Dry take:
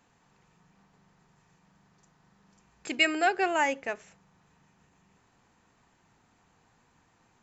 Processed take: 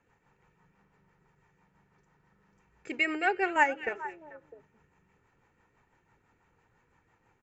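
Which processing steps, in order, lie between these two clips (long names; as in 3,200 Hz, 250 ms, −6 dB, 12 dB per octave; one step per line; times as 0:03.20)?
comb filter 2.2 ms, depth 39%
0:03.40–0:03.89: transient designer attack +11 dB, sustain −2 dB
rotating-speaker cabinet horn 6 Hz
high shelf with overshoot 2,900 Hz −8 dB, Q 1.5
echo through a band-pass that steps 218 ms, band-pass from 3,000 Hz, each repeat −1.4 octaves, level −9 dB
level −1 dB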